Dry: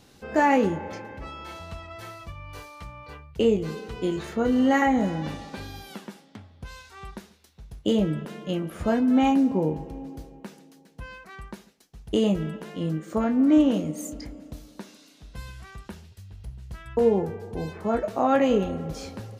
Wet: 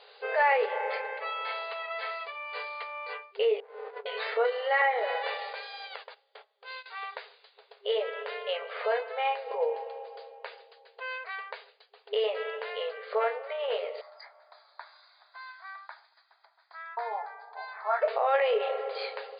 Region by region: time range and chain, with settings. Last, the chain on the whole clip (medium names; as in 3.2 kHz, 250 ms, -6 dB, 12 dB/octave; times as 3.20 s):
3.60–4.06 s: compressor with a negative ratio -39 dBFS + four-pole ladder low-pass 1.2 kHz, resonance 45% + sliding maximum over 17 samples
5.53–6.86 s: gate -45 dBFS, range -17 dB + peaking EQ 5.6 kHz +3.5 dB 0.73 oct + compression 3:1, threshold -39 dBFS
14.01–18.02 s: steep high-pass 520 Hz 48 dB/octave + static phaser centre 1.2 kHz, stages 4
whole clip: peak limiter -21 dBFS; FFT band-pass 400–4900 Hz; dynamic bell 2.1 kHz, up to +6 dB, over -58 dBFS, Q 2.5; trim +5 dB